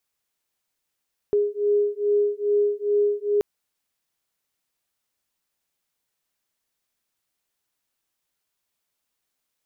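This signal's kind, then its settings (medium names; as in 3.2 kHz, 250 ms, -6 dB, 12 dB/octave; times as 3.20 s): beating tones 411 Hz, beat 2.4 Hz, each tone -22 dBFS 2.08 s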